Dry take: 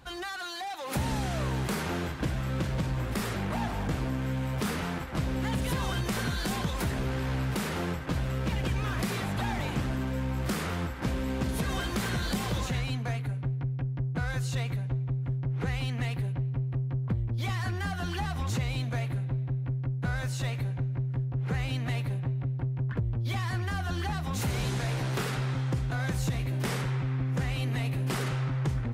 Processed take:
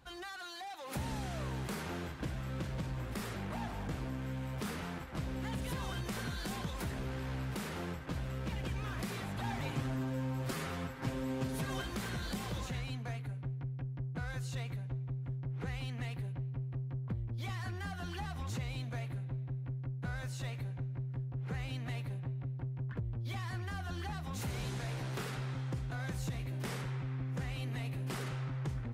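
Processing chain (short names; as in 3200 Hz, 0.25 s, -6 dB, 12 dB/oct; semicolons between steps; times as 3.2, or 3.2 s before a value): 9.43–11.82 comb 7.5 ms, depth 77%; gain -8.5 dB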